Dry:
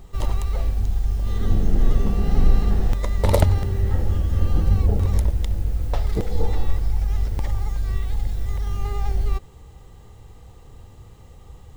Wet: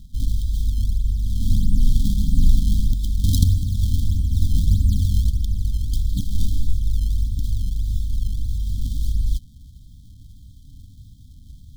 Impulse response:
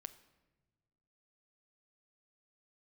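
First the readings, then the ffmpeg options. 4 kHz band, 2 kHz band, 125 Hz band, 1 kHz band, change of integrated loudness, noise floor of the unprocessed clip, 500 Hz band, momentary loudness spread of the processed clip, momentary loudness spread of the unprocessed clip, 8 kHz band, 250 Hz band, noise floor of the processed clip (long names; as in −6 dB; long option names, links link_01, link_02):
+4.0 dB, below −40 dB, +1.0 dB, below −40 dB, +0.5 dB, −46 dBFS, below −35 dB, 7 LU, 7 LU, can't be measured, +0.5 dB, −45 dBFS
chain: -af "acrusher=samples=24:mix=1:aa=0.000001:lfo=1:lforange=38.4:lforate=1.6,afftfilt=real='re*(1-between(b*sr/4096,300,3100))':imag='im*(1-between(b*sr/4096,300,3100))':win_size=4096:overlap=0.75,volume=1dB"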